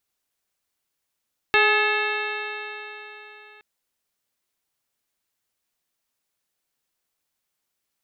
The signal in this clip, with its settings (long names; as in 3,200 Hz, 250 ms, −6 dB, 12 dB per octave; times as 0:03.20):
stiff-string partials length 2.07 s, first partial 418 Hz, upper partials −2/−2/2.5/−2/2/−11.5/−6.5/−14 dB, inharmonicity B 0.0032, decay 3.74 s, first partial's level −21.5 dB